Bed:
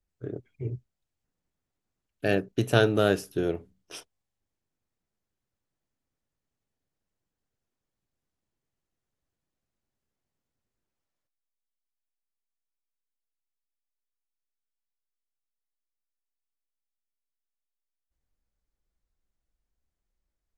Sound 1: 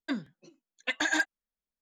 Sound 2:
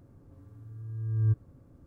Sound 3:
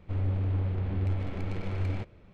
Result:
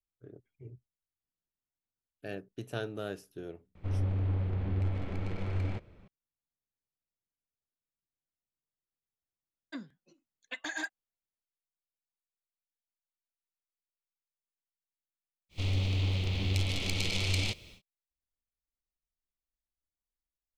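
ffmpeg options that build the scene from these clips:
-filter_complex "[3:a]asplit=2[a][b];[0:a]volume=-15.5dB[c];[b]aexciter=amount=15.7:drive=5.1:freq=2.5k[d];[a]atrim=end=2.33,asetpts=PTS-STARTPTS,volume=-2dB,afade=t=in:d=0.004:c=hsin,afade=t=out:st=2.326:d=0.004:c=hsin,adelay=3750[e];[1:a]atrim=end=1.81,asetpts=PTS-STARTPTS,volume=-9.5dB,afade=t=in:d=0.004:c=hsin,afade=t=out:st=1.806:d=0.004:c=hsin,adelay=9640[f];[d]atrim=end=2.33,asetpts=PTS-STARTPTS,volume=-1.5dB,afade=t=in:d=0.1,afade=t=out:st=2.23:d=0.1,adelay=15490[g];[c][e][f][g]amix=inputs=4:normalize=0"

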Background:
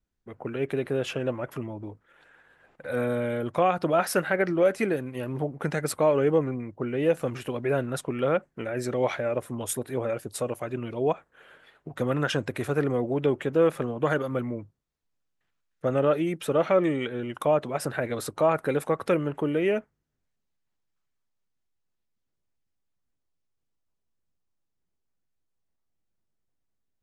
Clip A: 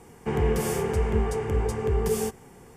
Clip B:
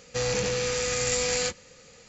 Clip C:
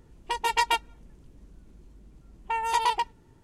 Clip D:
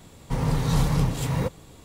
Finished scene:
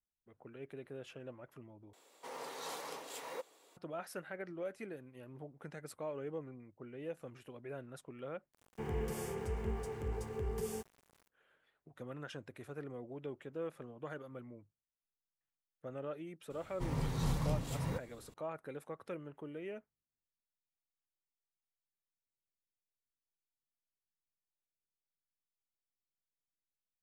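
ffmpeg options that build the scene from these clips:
-filter_complex "[4:a]asplit=2[a][b];[0:a]volume=-20dB[c];[a]highpass=f=400:w=0.5412,highpass=f=400:w=1.3066[d];[1:a]aeval=exprs='val(0)*gte(abs(val(0)),0.0075)':c=same[e];[c]asplit=3[f][g][h];[f]atrim=end=1.934[i];[d]atrim=end=1.84,asetpts=PTS-STARTPTS,volume=-12dB[j];[g]atrim=start=3.766:end=8.524[k];[e]atrim=end=2.76,asetpts=PTS-STARTPTS,volume=-14dB[l];[h]atrim=start=11.276[m];[b]atrim=end=1.84,asetpts=PTS-STARTPTS,volume=-12.5dB,afade=t=in:d=0.004:c=hsin,afade=t=out:st=1.836:d=0.004:c=hsin,adelay=16500[n];[i][j]acrossfade=d=0.004:c1=hsin:c2=hsin[o];[o][k]acrossfade=d=0.004:c1=hsin:c2=hsin[p];[p][l]acrossfade=d=0.004:c1=hsin:c2=hsin[q];[q][m]acrossfade=d=0.004:c1=hsin:c2=hsin[r];[r][n]amix=inputs=2:normalize=0"

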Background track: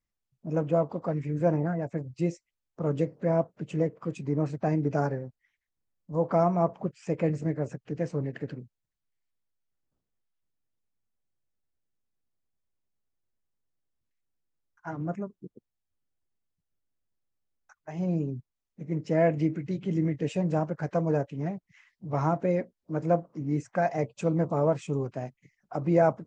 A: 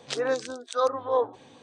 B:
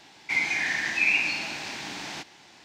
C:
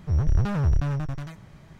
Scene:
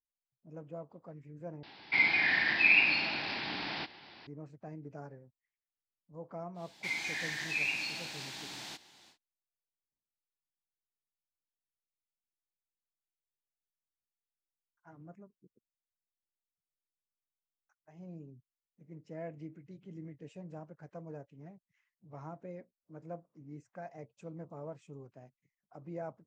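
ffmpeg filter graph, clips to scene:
-filter_complex "[2:a]asplit=2[a][b];[0:a]volume=-19.5dB[c];[a]aresample=11025,aresample=44100[d];[b]aexciter=amount=2.1:drive=4.1:freq=3.3k[e];[c]asplit=2[f][g];[f]atrim=end=1.634[h];[d]atrim=end=2.64,asetpts=PTS-STARTPTS,volume=-1dB[i];[g]atrim=start=4.266[j];[e]atrim=end=2.64,asetpts=PTS-STARTPTS,volume=-10.5dB,afade=t=in:d=0.1,afade=t=out:st=2.54:d=0.1,adelay=6540[k];[h][i]acrossfade=d=0.004:c1=hsin:c2=hsin[l];[l][j]acrossfade=d=0.004:c1=hsin:c2=hsin[m];[m][k]amix=inputs=2:normalize=0"

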